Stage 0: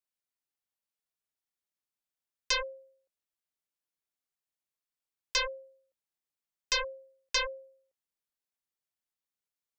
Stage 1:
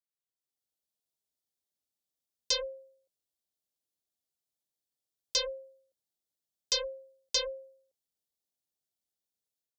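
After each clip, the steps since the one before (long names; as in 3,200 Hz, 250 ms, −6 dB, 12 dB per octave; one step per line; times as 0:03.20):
high-pass filter 41 Hz 24 dB per octave
flat-topped bell 1,600 Hz −13.5 dB
automatic gain control gain up to 8.5 dB
level −6.5 dB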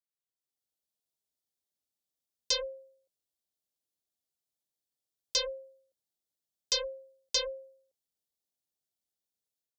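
no processing that can be heard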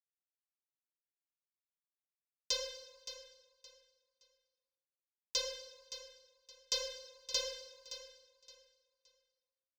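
mu-law and A-law mismatch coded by A
repeating echo 569 ms, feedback 26%, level −12 dB
on a send at −7 dB: convolution reverb RT60 1.1 s, pre-delay 38 ms
on the sum: level −5 dB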